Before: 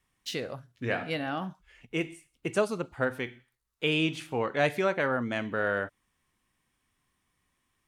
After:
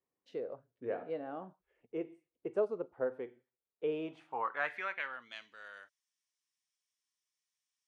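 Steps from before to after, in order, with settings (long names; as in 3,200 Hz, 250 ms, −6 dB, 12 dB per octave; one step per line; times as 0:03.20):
band-pass filter sweep 460 Hz → 5,700 Hz, 0:03.89–0:05.57
dynamic equaliser 1,100 Hz, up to +4 dB, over −54 dBFS, Q 1.3
level −2.5 dB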